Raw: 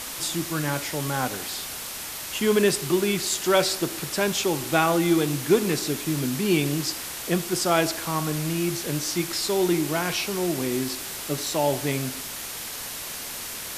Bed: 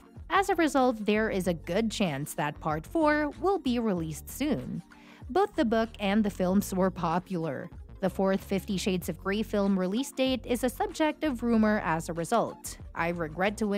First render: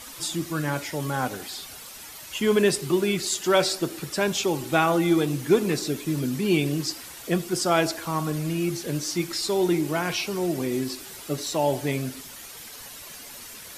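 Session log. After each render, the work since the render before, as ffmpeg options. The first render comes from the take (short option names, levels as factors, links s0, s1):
-af "afftdn=nr=10:nf=-35"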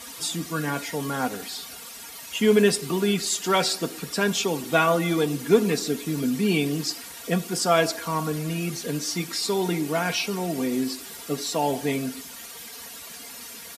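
-af "highpass=69,aecho=1:1:4.3:0.6"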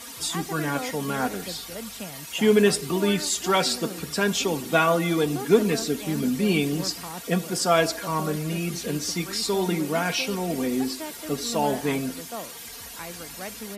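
-filter_complex "[1:a]volume=0.316[s0];[0:a][s0]amix=inputs=2:normalize=0"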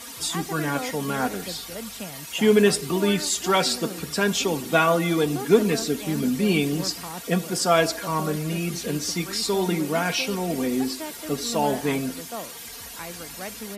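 -af "volume=1.12"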